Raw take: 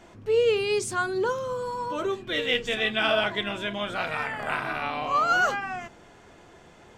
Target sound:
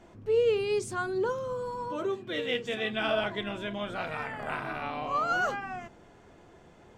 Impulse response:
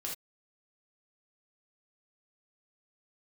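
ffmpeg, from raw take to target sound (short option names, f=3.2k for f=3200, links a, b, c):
-filter_complex "[0:a]asettb=1/sr,asplit=3[a][b][c];[a]atrim=end=1.964[d];[b]atrim=start=1.96:end=2.93,asetpts=PTS-STARTPTS,afade=t=in:d=0.004:c=qsin,afade=t=out:st=0.966:d=0.004:c=qsin,highpass=96[e];[c]atrim=start=2.926[f];[d][e]acrossfade=d=0.004:c1=hsin:c2=qsin[g];[g][f]acrossfade=d=0.004:c1=qsin:c2=hsin,tiltshelf=f=970:g=3.5,volume=-5dB"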